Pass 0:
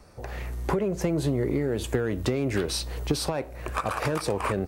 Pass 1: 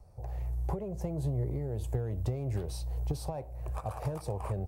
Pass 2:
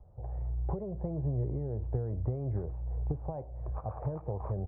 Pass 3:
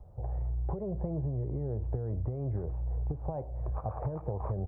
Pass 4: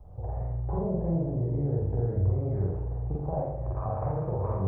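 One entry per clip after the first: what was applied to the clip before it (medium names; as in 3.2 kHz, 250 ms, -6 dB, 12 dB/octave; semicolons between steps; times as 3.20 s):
FFT filter 120 Hz 0 dB, 260 Hz -17 dB, 780 Hz -6 dB, 1.4 kHz -22 dB, 3.5 kHz -20 dB, 14 kHz -10 dB
Gaussian low-pass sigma 6.5 samples
compression, threshold -34 dBFS, peak gain reduction 8 dB; trim +4.5 dB
reverberation RT60 0.85 s, pre-delay 42 ms, DRR -4.5 dB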